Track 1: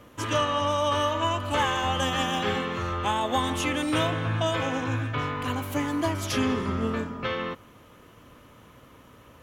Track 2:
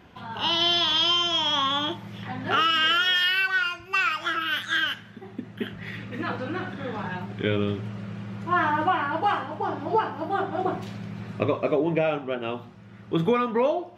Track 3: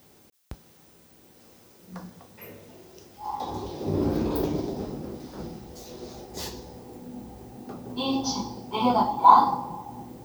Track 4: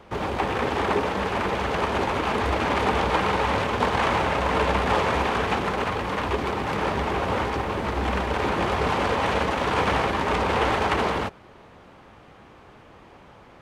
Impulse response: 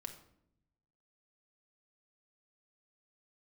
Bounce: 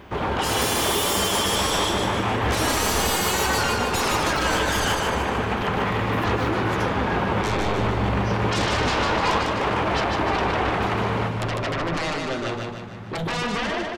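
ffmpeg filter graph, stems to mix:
-filter_complex "[0:a]adelay=500,volume=-10dB[link_01];[1:a]aeval=exprs='0.316*sin(PI/2*6.31*val(0)/0.316)':channel_layout=same,volume=-14.5dB,asplit=2[link_02][link_03];[link_03]volume=-3.5dB[link_04];[2:a]volume=-14.5dB[link_05];[3:a]bass=frequency=250:gain=1,treble=frequency=4000:gain=-6,alimiter=limit=-17dB:level=0:latency=1:release=254,volume=1.5dB,asplit=2[link_06][link_07];[link_07]volume=-7.5dB[link_08];[link_04][link_08]amix=inputs=2:normalize=0,aecho=0:1:151|302|453|604|755|906|1057:1|0.5|0.25|0.125|0.0625|0.0312|0.0156[link_09];[link_01][link_02][link_05][link_06][link_09]amix=inputs=5:normalize=0"

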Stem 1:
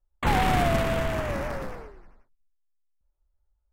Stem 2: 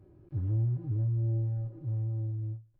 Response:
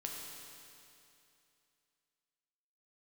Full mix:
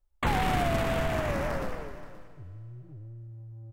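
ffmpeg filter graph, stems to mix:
-filter_complex "[0:a]volume=-0.5dB,asplit=3[link_01][link_02][link_03];[link_02]volume=-10.5dB[link_04];[link_03]volume=-17dB[link_05];[1:a]acompressor=threshold=-31dB:ratio=6,asoftclip=type=tanh:threshold=-33.5dB,adelay=2050,volume=-7dB[link_06];[2:a]atrim=start_sample=2205[link_07];[link_04][link_07]afir=irnorm=-1:irlink=0[link_08];[link_05]aecho=0:1:526:1[link_09];[link_01][link_06][link_08][link_09]amix=inputs=4:normalize=0,acompressor=threshold=-25dB:ratio=2.5"

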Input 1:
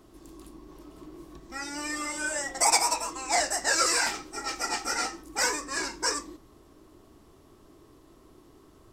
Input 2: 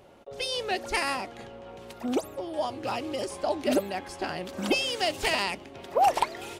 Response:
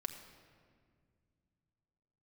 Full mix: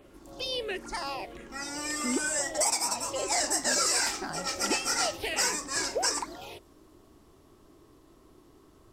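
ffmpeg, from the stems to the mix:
-filter_complex "[0:a]adynamicequalizer=threshold=0.00891:dfrequency=3600:dqfactor=0.7:tfrequency=3600:tqfactor=0.7:attack=5:release=100:ratio=0.375:range=3:mode=boostabove:tftype=highshelf,volume=-2dB[link_01];[1:a]bandreject=frequency=60:width_type=h:width=6,bandreject=frequency=120:width_type=h:width=6,alimiter=limit=-18dB:level=0:latency=1:release=140,asplit=2[link_02][link_03];[link_03]afreqshift=-1.5[link_04];[link_02][link_04]amix=inputs=2:normalize=1,volume=-1dB[link_05];[link_01][link_05]amix=inputs=2:normalize=0,alimiter=limit=-15dB:level=0:latency=1:release=183"

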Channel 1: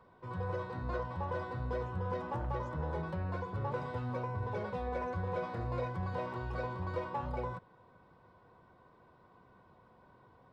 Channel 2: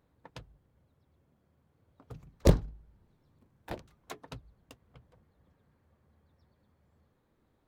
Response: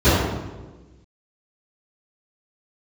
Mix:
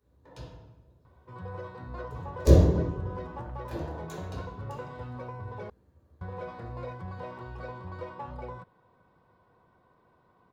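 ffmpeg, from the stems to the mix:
-filter_complex "[0:a]adelay=1050,volume=-2.5dB,asplit=3[link_01][link_02][link_03];[link_01]atrim=end=5.7,asetpts=PTS-STARTPTS,afade=type=out:start_time=5.696:duration=0.004:curve=hsin[link_04];[link_02]atrim=start=5.7:end=6.21,asetpts=PTS-STARTPTS,volume=0[link_05];[link_03]atrim=start=6.21,asetpts=PTS-STARTPTS,afade=type=in:duration=0.004:curve=hsin[link_06];[link_04][link_05][link_06]concat=n=3:v=0:a=1[link_07];[1:a]bass=frequency=250:gain=-7,treble=frequency=4000:gain=10,volume=-11dB,asplit=2[link_08][link_09];[link_09]volume=-13dB[link_10];[2:a]atrim=start_sample=2205[link_11];[link_10][link_11]afir=irnorm=-1:irlink=0[link_12];[link_07][link_08][link_12]amix=inputs=3:normalize=0"

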